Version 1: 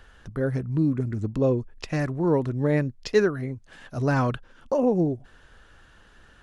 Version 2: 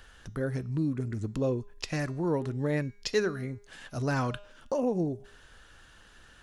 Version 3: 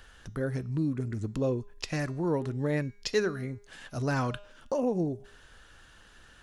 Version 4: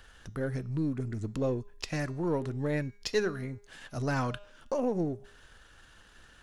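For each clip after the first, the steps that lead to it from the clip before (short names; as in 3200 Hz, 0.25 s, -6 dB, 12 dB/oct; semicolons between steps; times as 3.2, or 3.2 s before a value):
high shelf 2600 Hz +9 dB; de-hum 203.8 Hz, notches 40; in parallel at -0.5 dB: compressor, threshold -29 dBFS, peak gain reduction 14 dB; on the sum: gain -9 dB
nothing audible
half-wave gain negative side -3 dB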